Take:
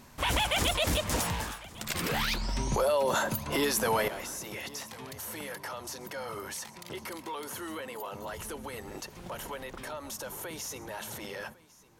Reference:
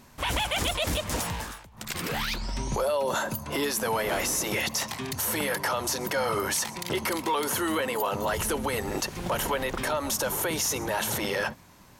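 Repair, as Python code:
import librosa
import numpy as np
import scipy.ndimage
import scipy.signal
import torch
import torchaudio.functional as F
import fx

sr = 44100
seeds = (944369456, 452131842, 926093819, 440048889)

y = fx.fix_declip(x, sr, threshold_db=-19.5)
y = fx.fix_echo_inverse(y, sr, delay_ms=1101, level_db=-21.0)
y = fx.gain(y, sr, db=fx.steps((0.0, 0.0), (4.08, 11.5)))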